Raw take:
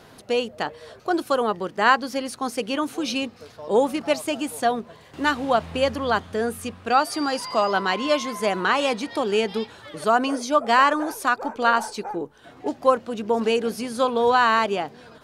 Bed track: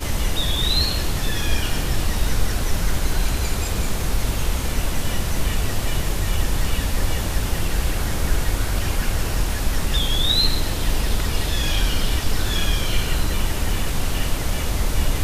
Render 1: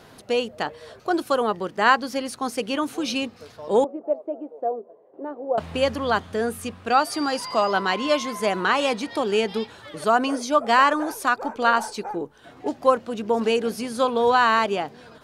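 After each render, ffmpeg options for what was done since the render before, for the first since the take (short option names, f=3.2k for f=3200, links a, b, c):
-filter_complex "[0:a]asettb=1/sr,asplit=3[a][b][c];[a]atrim=end=3.844[d];[b]atrim=start=3.84:end=5.58,asetpts=PTS-STARTPTS,afade=t=in:d=0.004:c=qsin,afade=t=out:st=1.736:d=0.004:c=qsin,asuperpass=centerf=480:order=4:qfactor=1.5[e];[c]atrim=start=5.576[f];[d][e]acrossfade=d=0.004:c1=hsin:c2=qsin[g];[g][f]acrossfade=d=0.004:c1=qsin:c2=hsin"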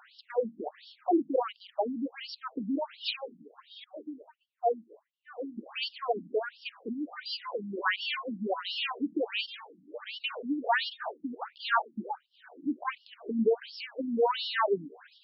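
-af "asoftclip=type=tanh:threshold=-12dB,afftfilt=real='re*between(b*sr/1024,220*pow(4000/220,0.5+0.5*sin(2*PI*1.4*pts/sr))/1.41,220*pow(4000/220,0.5+0.5*sin(2*PI*1.4*pts/sr))*1.41)':imag='im*between(b*sr/1024,220*pow(4000/220,0.5+0.5*sin(2*PI*1.4*pts/sr))/1.41,220*pow(4000/220,0.5+0.5*sin(2*PI*1.4*pts/sr))*1.41)':win_size=1024:overlap=0.75"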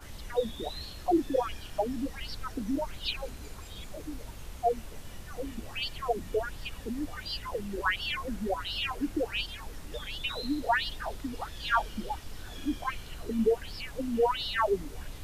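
-filter_complex "[1:a]volume=-21.5dB[a];[0:a][a]amix=inputs=2:normalize=0"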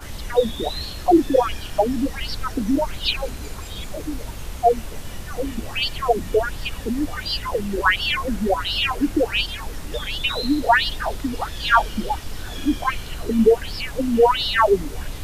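-af "volume=11dB"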